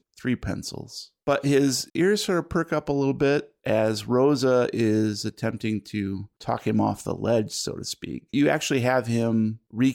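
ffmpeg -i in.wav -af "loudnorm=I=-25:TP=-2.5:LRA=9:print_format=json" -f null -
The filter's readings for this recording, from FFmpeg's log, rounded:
"input_i" : "-24.7",
"input_tp" : "-10.2",
"input_lra" : "2.5",
"input_thresh" : "-34.8",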